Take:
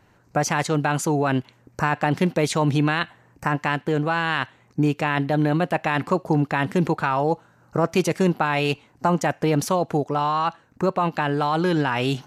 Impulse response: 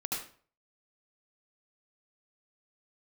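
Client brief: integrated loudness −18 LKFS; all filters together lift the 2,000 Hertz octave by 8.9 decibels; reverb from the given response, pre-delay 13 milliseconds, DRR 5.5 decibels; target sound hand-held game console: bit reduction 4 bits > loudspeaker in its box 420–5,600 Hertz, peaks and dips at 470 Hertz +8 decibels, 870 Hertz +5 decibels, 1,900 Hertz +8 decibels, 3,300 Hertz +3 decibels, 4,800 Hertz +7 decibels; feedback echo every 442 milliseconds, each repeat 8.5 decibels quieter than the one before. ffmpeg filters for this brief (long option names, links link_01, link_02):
-filter_complex "[0:a]equalizer=frequency=2000:width_type=o:gain=5.5,aecho=1:1:442|884|1326|1768:0.376|0.143|0.0543|0.0206,asplit=2[link_01][link_02];[1:a]atrim=start_sample=2205,adelay=13[link_03];[link_02][link_03]afir=irnorm=-1:irlink=0,volume=-9dB[link_04];[link_01][link_04]amix=inputs=2:normalize=0,acrusher=bits=3:mix=0:aa=0.000001,highpass=420,equalizer=frequency=470:width_type=q:width=4:gain=8,equalizer=frequency=870:width_type=q:width=4:gain=5,equalizer=frequency=1900:width_type=q:width=4:gain=8,equalizer=frequency=3300:width_type=q:width=4:gain=3,equalizer=frequency=4800:width_type=q:width=4:gain=7,lowpass=frequency=5600:width=0.5412,lowpass=frequency=5600:width=1.3066,volume=-1dB"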